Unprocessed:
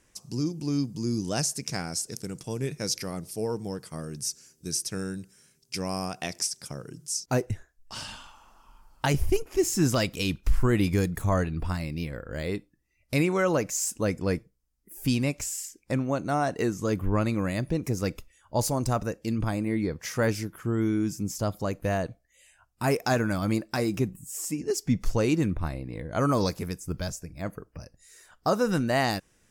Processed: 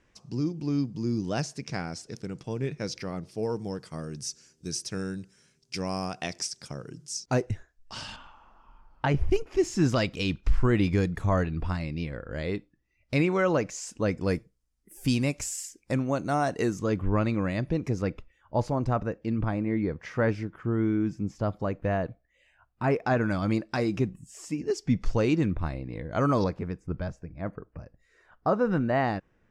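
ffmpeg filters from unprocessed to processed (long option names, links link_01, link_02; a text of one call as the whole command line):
ffmpeg -i in.wav -af "asetnsamples=nb_out_samples=441:pad=0,asendcmd='3.43 lowpass f 5900;8.16 lowpass f 2300;9.31 lowpass f 4400;14.21 lowpass f 10000;16.79 lowpass f 4000;18.02 lowpass f 2300;23.21 lowpass f 4400;26.44 lowpass f 1800',lowpass=3500" out.wav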